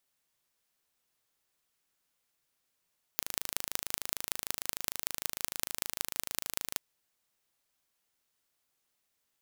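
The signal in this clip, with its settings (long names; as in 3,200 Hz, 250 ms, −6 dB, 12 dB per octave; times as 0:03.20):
impulse train 26.6 per second, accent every 5, −2 dBFS 3.58 s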